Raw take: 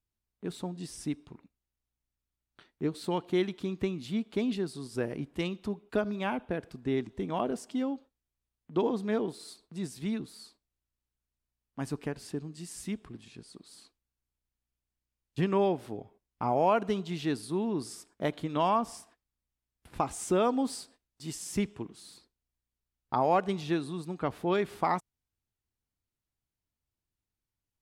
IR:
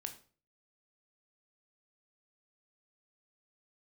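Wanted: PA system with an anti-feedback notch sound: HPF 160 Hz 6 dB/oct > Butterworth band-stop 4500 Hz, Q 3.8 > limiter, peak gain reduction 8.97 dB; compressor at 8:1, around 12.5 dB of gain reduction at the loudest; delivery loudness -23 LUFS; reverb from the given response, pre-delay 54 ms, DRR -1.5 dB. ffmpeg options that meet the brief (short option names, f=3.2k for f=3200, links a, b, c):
-filter_complex "[0:a]acompressor=threshold=-35dB:ratio=8,asplit=2[a][b];[1:a]atrim=start_sample=2205,adelay=54[c];[b][c]afir=irnorm=-1:irlink=0,volume=4.5dB[d];[a][d]amix=inputs=2:normalize=0,highpass=f=160:p=1,asuperstop=centerf=4500:order=8:qfactor=3.8,volume=16.5dB,alimiter=limit=-11.5dB:level=0:latency=1"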